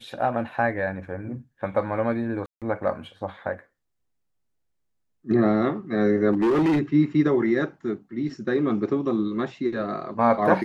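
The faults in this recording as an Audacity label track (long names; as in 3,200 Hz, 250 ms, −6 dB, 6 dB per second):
2.460000	2.620000	drop-out 157 ms
6.330000	6.800000	clipping −17.5 dBFS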